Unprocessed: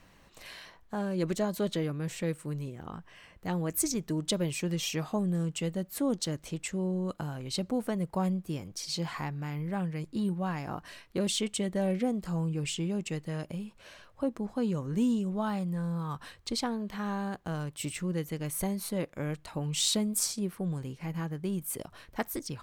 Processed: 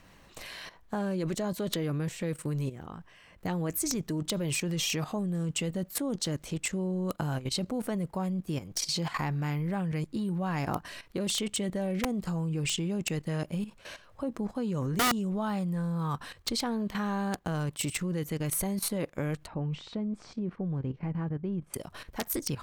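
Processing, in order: level quantiser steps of 13 dB; wrapped overs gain 28 dB; 19.47–21.74 tape spacing loss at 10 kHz 41 dB; gain +8.5 dB

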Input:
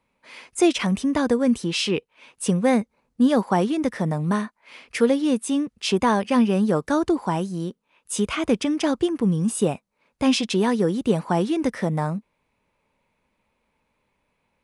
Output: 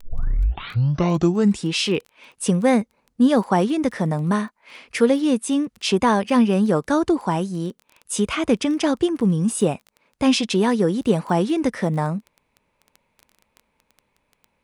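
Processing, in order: tape start at the beginning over 1.75 s; crackle 12/s -33 dBFS; gain +2 dB

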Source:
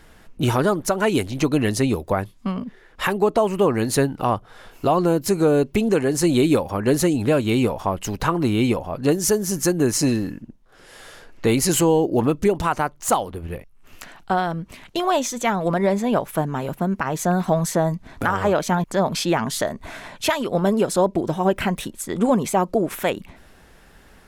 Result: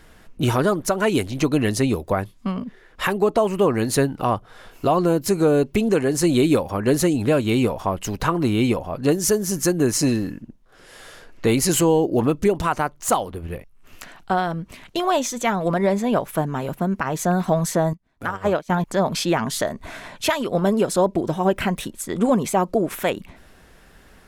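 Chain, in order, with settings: notch 850 Hz, Q 22; 17.93–18.7 upward expander 2.5:1, over -34 dBFS

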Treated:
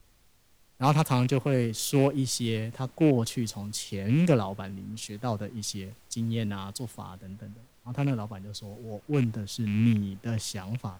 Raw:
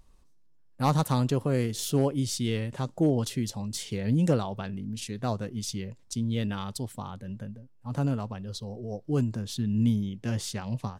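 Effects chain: rattling part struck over -26 dBFS, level -28 dBFS; added noise pink -55 dBFS; three-band expander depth 40%

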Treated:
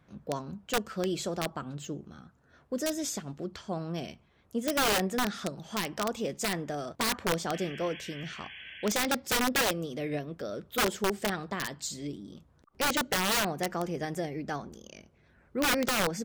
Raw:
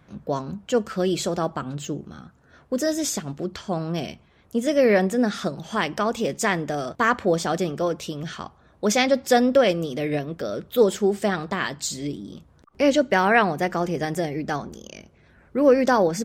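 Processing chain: wrapped overs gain 13 dB; painted sound noise, 7.53–8.9, 1500–3400 Hz -38 dBFS; gain -8 dB

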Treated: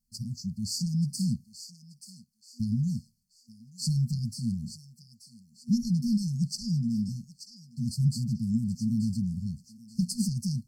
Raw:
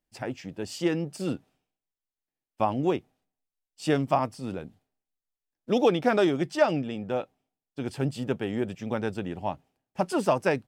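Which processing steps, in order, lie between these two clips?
thinning echo 0.882 s, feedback 36%, high-pass 850 Hz, level -11 dB; added harmonics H 5 -19 dB, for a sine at -9 dBFS; FFT band-reject 240–4200 Hz; gain +3.5 dB

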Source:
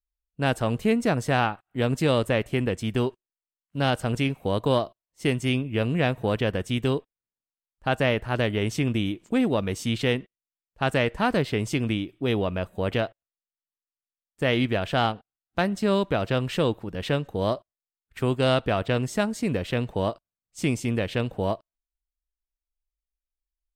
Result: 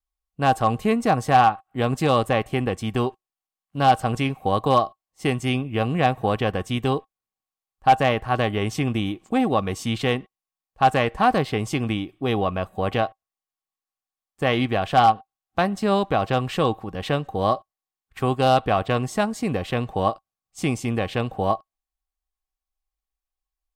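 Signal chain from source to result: vibrato 0.89 Hz 14 cents; small resonant body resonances 780/1100 Hz, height 16 dB, ringing for 70 ms; overloaded stage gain 9.5 dB; gain +1 dB

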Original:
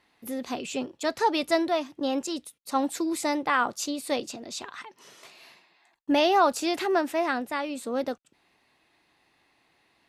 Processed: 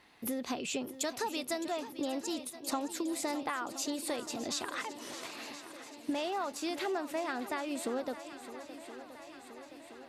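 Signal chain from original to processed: 0.86–1.72 high shelf 6400 Hz +11.5 dB; compressor 12:1, threshold -37 dBFS, peak gain reduction 20.5 dB; swung echo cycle 1.023 s, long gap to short 1.5:1, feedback 62%, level -13.5 dB; gain +4.5 dB

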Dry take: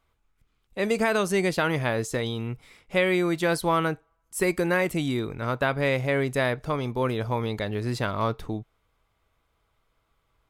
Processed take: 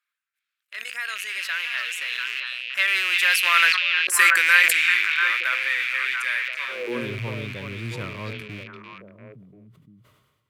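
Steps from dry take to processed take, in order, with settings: rattling part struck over -40 dBFS, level -18 dBFS; Doppler pass-by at 4, 21 m/s, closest 11 m; bell 820 Hz -10.5 dB 0.36 oct; delay with a stepping band-pass 0.344 s, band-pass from 3300 Hz, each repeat -1.4 oct, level -0.5 dB; high-pass sweep 1700 Hz -> 120 Hz, 6.6–7.1; high shelf 6700 Hz +5.5 dB; sustainer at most 48 dB/s; gain +7.5 dB

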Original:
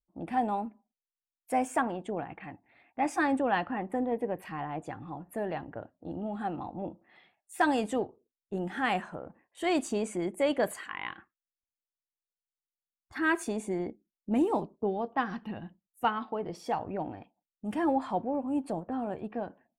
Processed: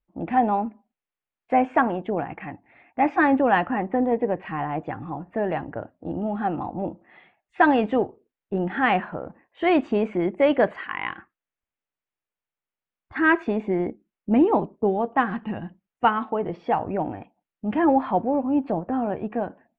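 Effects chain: LPF 2800 Hz 24 dB/oct; gain +8.5 dB

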